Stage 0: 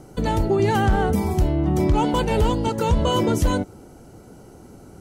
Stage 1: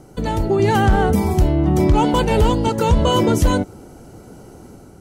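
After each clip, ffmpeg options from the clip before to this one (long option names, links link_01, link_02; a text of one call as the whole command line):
ffmpeg -i in.wav -af "dynaudnorm=framelen=360:gausssize=3:maxgain=4.5dB" out.wav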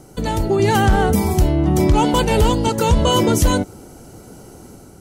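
ffmpeg -i in.wav -af "highshelf=frequency=3700:gain=7.5" out.wav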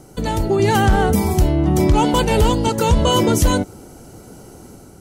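ffmpeg -i in.wav -af anull out.wav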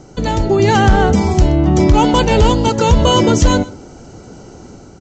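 ffmpeg -i in.wav -af "aresample=16000,aresample=44100,aecho=1:1:126:0.1,volume=4dB" out.wav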